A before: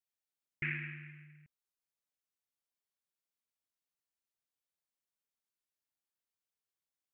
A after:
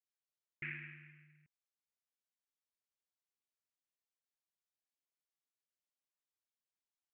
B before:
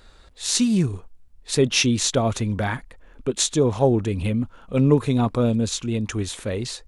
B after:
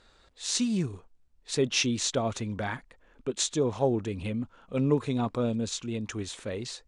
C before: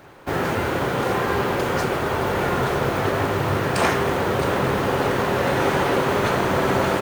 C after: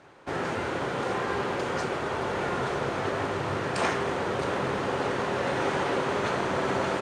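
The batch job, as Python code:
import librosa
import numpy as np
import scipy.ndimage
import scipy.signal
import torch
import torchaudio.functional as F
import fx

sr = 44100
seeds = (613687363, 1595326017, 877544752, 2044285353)

y = scipy.signal.sosfilt(scipy.signal.butter(4, 8700.0, 'lowpass', fs=sr, output='sos'), x)
y = fx.low_shelf(y, sr, hz=110.0, db=-8.5)
y = y * librosa.db_to_amplitude(-6.5)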